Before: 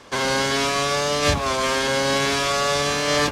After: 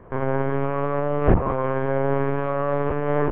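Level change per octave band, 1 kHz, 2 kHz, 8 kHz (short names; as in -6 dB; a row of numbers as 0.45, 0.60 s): -3.5 dB, -11.0 dB, under -40 dB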